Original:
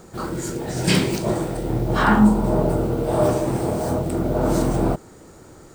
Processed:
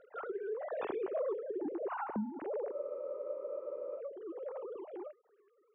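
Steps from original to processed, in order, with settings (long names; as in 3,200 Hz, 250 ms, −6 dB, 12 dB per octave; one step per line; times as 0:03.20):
three sine waves on the formant tracks
source passing by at 0:01.30, 25 m/s, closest 1.4 metres
downward compressor 10 to 1, threshold −47 dBFS, peak gain reduction 23.5 dB
treble cut that deepens with the level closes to 1,200 Hz, closed at −49 dBFS
frozen spectrum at 0:02.73, 1.25 s
level +13 dB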